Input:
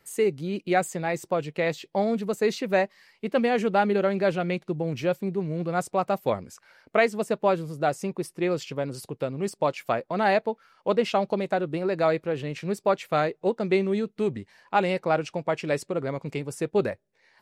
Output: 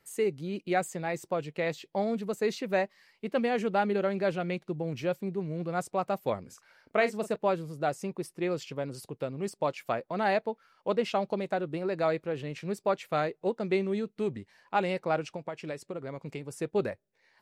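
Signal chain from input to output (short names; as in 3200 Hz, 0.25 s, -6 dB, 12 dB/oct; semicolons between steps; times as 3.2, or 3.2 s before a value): 6.42–7.36 doubler 38 ms -11.5 dB; 15.27–16.55 compressor, threshold -29 dBFS, peak gain reduction 9 dB; gain -5 dB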